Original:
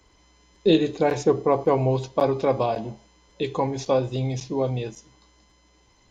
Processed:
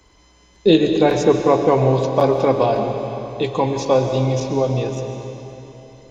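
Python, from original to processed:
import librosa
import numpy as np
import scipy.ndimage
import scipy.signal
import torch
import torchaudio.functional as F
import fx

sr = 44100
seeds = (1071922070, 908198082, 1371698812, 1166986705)

y = fx.rev_freeverb(x, sr, rt60_s=3.4, hf_ratio=0.9, predelay_ms=85, drr_db=5.0)
y = y * librosa.db_to_amplitude(5.0)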